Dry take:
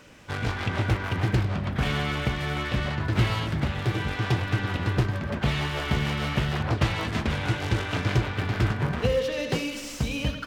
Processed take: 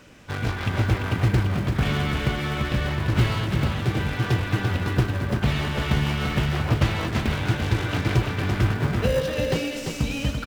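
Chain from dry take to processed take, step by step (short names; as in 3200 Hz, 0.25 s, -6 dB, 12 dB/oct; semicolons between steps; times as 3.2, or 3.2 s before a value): in parallel at -9 dB: sample-and-hold 40×; on the sum: echo 0.341 s -6 dB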